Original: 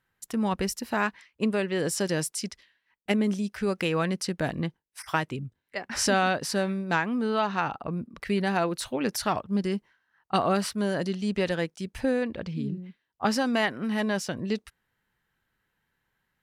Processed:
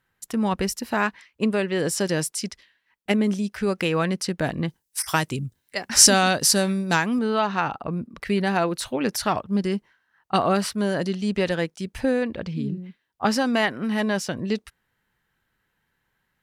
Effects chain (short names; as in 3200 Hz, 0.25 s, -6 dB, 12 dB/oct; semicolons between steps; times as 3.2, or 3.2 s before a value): 4.68–7.19 tone controls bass +3 dB, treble +14 dB; gain +3.5 dB